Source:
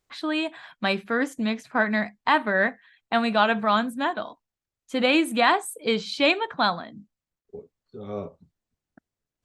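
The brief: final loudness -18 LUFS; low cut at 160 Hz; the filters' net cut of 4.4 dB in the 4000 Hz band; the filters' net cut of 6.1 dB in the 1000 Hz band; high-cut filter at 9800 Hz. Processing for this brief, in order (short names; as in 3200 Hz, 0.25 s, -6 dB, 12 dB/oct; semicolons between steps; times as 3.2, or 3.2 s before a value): HPF 160 Hz; LPF 9800 Hz; bell 1000 Hz -8 dB; bell 4000 Hz -5 dB; gain +9.5 dB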